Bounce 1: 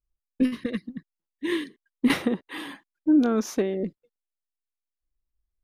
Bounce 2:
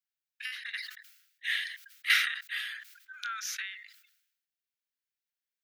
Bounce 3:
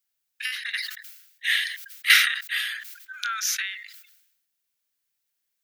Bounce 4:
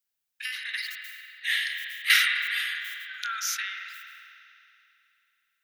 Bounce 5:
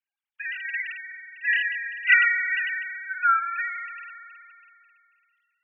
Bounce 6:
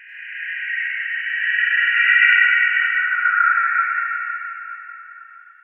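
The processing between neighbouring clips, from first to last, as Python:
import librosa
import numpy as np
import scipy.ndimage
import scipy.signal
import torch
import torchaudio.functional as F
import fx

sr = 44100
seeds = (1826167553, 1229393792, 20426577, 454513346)

y1 = scipy.signal.sosfilt(scipy.signal.butter(12, 1400.0, 'highpass', fs=sr, output='sos'), x)
y1 = fx.peak_eq(y1, sr, hz=9000.0, db=-6.5, octaves=1.0)
y1 = fx.sustainer(y1, sr, db_per_s=69.0)
y1 = F.gain(torch.from_numpy(y1), 4.0).numpy()
y2 = fx.high_shelf(y1, sr, hz=5300.0, db=7.5)
y2 = F.gain(torch.from_numpy(y2), 7.0).numpy()
y3 = fx.rev_spring(y2, sr, rt60_s=2.8, pass_ms=(44,), chirp_ms=75, drr_db=3.0)
y3 = F.gain(torch.from_numpy(y3), -4.0).numpy()
y4 = fx.sine_speech(y3, sr)
y4 = F.gain(torch.from_numpy(y4), 4.0).numpy()
y5 = fx.spec_swells(y4, sr, rise_s=2.46)
y5 = fx.rev_plate(y5, sr, seeds[0], rt60_s=4.0, hf_ratio=0.5, predelay_ms=80, drr_db=-9.5)
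y5 = F.gain(torch.from_numpy(y5), -6.5).numpy()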